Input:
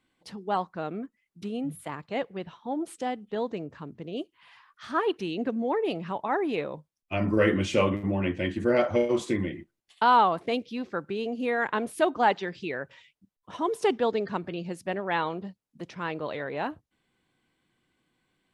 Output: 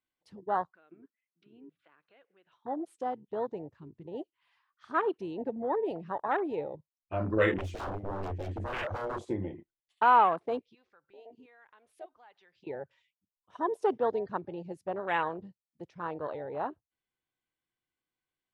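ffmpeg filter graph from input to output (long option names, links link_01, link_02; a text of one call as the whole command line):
ffmpeg -i in.wav -filter_complex "[0:a]asettb=1/sr,asplit=3[link_01][link_02][link_03];[link_01]atrim=end=0.704[link_04];[link_02]atrim=start=0.7:end=2.52,asetpts=PTS-STARTPTS,afade=type=in:duration=0.004:curve=qsin,afade=type=out:start_time=1.816:duration=0.004:curve=qsin,acompressor=threshold=-44dB:ratio=3:attack=3.2:release=140:knee=1:detection=peak,highpass=240,equalizer=frequency=330:width_type=q:width=4:gain=4,equalizer=frequency=860:width_type=q:width=4:gain=-4,equalizer=frequency=1500:width_type=q:width=4:gain=9,equalizer=frequency=2600:width_type=q:width=4:gain=5,lowpass=frequency=4100:width=0.5412,lowpass=frequency=4100:width=1.3066[link_05];[link_03]atrim=start=2.516[link_06];[link_04][link_05]acrossfade=duration=0.004:curve1=hsin:curve2=qsin[link_07];[link_07][link_06]acrossfade=duration=0.004:curve1=qsin:curve2=hsin,asettb=1/sr,asplit=3[link_08][link_09][link_10];[link_08]atrim=end=7.584[link_11];[link_09]atrim=start=7.58:end=9.29,asetpts=PTS-STARTPTS,afade=type=in:duration=0.004:curve=qsin,afade=type=out:start_time=1.706:duration=0.004:curve=qsin,equalizer=frequency=91:width=7.7:gain=8.5,aeval=exprs='0.0473*(abs(mod(val(0)/0.0473+3,4)-2)-1)':channel_layout=same[link_12];[link_10]atrim=start=9.286[link_13];[link_11][link_12]acrossfade=duration=0.004:curve1=hsin:curve2=qsin[link_14];[link_14][link_13]acrossfade=duration=0.004:curve1=qsin:curve2=hsin,asettb=1/sr,asplit=3[link_15][link_16][link_17];[link_15]atrim=end=10.594[link_18];[link_16]atrim=start=10.59:end=12.67,asetpts=PTS-STARTPTS,afade=type=in:duration=0.004:curve=qsin,afade=type=out:start_time=2.076:duration=0.004:curve=qsin,lowpass=frequency=3000:poles=1,equalizer=frequency=220:width_type=o:width=3:gain=-11,acompressor=threshold=-45dB:ratio=2:attack=3.2:release=140:knee=1:detection=peak[link_19];[link_17]atrim=start=12.666[link_20];[link_18][link_19]acrossfade=duration=0.004:curve1=hsin:curve2=qsin[link_21];[link_21][link_20]acrossfade=duration=0.004:curve1=qsin:curve2=hsin,afwtdn=0.0251,equalizer=frequency=210:width=1.1:gain=-8.5,volume=-1dB" out.wav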